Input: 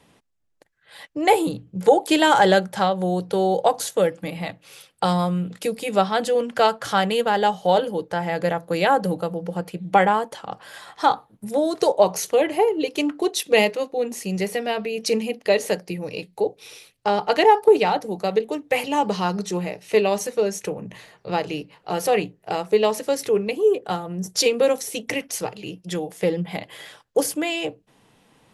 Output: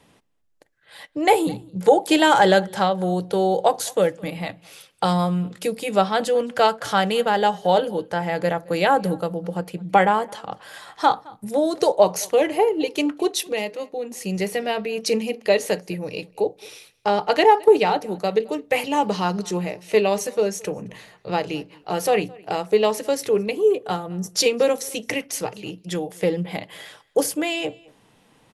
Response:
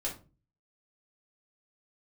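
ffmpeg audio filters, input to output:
-filter_complex "[0:a]asettb=1/sr,asplit=3[a][b][c];[a]atrim=end=13.454[d];[b]atrim=start=13.45:end=14.21,asetpts=PTS-STARTPTS,afade=t=in:d=0.004:c=qsin,afade=t=out:st=0.756:d=0.004:c=qsin,acompressor=threshold=-30dB:ratio=2[e];[c]atrim=start=14.206[f];[d][e]acrossfade=d=0.004:c1=hsin:c2=qsin[g];[g][f]acrossfade=d=0.004:c1=qsin:c2=hsin,asplit=2[h][i];[i]adelay=215.7,volume=-24dB,highshelf=f=4k:g=-4.85[j];[h][j]amix=inputs=2:normalize=0,asplit=2[k][l];[1:a]atrim=start_sample=2205[m];[l][m]afir=irnorm=-1:irlink=0,volume=-24dB[n];[k][n]amix=inputs=2:normalize=0"

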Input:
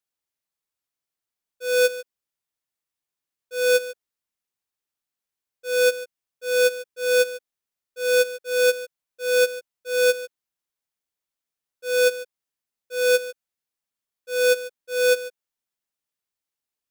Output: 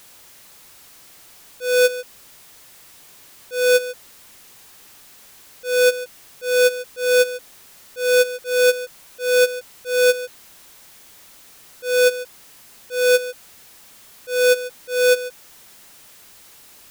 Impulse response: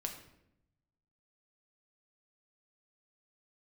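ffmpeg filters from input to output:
-af "aeval=exprs='val(0)+0.5*0.0075*sgn(val(0))':c=same,volume=3dB"

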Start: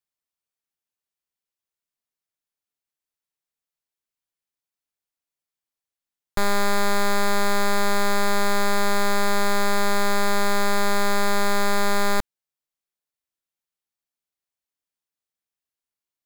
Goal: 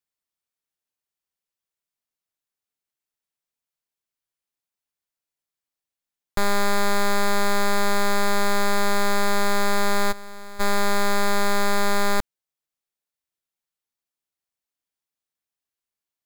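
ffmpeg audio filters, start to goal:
-filter_complex "[0:a]asplit=3[a][b][c];[a]afade=t=out:st=10.11:d=0.02[d];[b]agate=range=-33dB:threshold=-9dB:ratio=3:detection=peak,afade=t=in:st=10.11:d=0.02,afade=t=out:st=10.59:d=0.02[e];[c]afade=t=in:st=10.59:d=0.02[f];[d][e][f]amix=inputs=3:normalize=0"

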